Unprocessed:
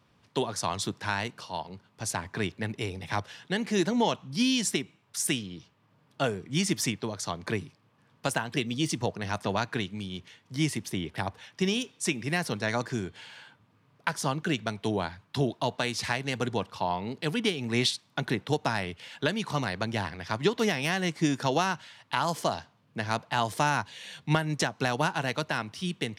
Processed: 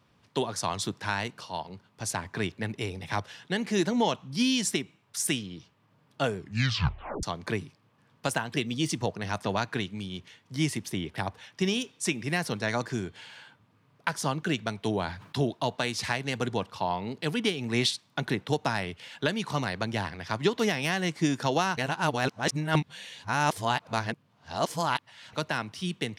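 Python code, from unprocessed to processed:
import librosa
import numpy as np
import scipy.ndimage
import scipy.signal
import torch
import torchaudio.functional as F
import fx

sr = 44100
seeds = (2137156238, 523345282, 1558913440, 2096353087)

y = fx.sustainer(x, sr, db_per_s=100.0, at=(14.86, 15.37))
y = fx.edit(y, sr, fx.tape_stop(start_s=6.37, length_s=0.86),
    fx.reverse_span(start_s=21.77, length_s=3.56), tone=tone)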